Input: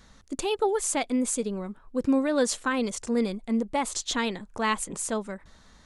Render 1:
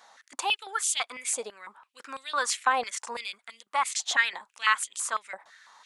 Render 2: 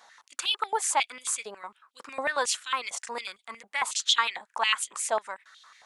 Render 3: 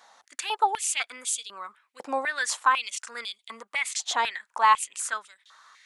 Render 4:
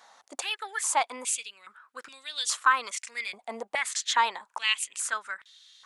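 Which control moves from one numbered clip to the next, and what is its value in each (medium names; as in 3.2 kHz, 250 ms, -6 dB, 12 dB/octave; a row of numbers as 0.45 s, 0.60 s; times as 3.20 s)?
step-sequenced high-pass, rate: 6 Hz, 11 Hz, 4 Hz, 2.4 Hz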